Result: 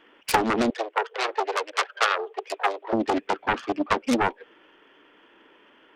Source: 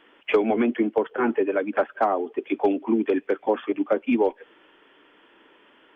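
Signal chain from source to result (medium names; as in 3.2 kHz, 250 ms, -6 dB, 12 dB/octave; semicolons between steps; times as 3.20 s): self-modulated delay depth 0.83 ms; 0.70–2.93 s: elliptic high-pass 420 Hz, stop band 50 dB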